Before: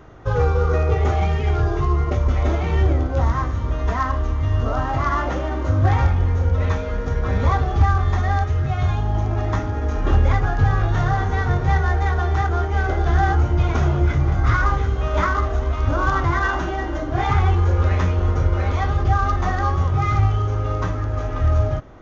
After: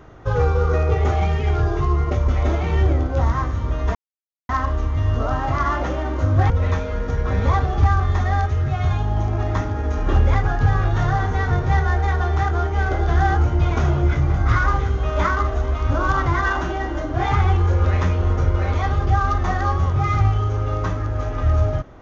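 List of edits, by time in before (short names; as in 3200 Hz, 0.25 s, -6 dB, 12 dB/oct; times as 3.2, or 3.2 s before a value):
3.95 insert silence 0.54 s
5.96–6.48 cut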